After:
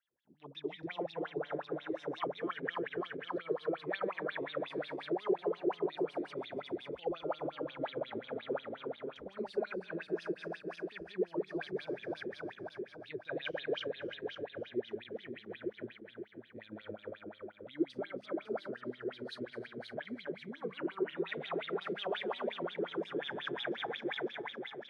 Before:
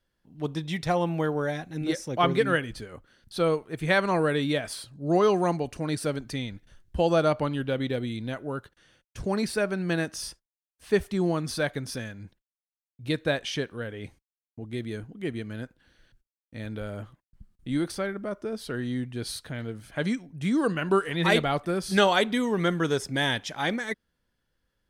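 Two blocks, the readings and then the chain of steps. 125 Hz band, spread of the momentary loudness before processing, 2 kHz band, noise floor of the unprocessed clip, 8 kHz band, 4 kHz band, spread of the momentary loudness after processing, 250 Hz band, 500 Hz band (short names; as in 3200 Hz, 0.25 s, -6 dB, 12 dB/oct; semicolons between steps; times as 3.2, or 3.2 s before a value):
-21.0 dB, 15 LU, -12.0 dB, under -85 dBFS, under -30 dB, -12.0 dB, 9 LU, -12.0 dB, -9.5 dB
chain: regenerating reverse delay 0.138 s, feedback 81%, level -2.5 dB; tone controls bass +10 dB, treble -7 dB; in parallel at +2 dB: compressor, threshold -25 dBFS, peak gain reduction 13.5 dB; on the sum: limiter -11 dBFS, peak gain reduction 8.5 dB; wah 5.6 Hz 350–3800 Hz, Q 10; gain -3 dB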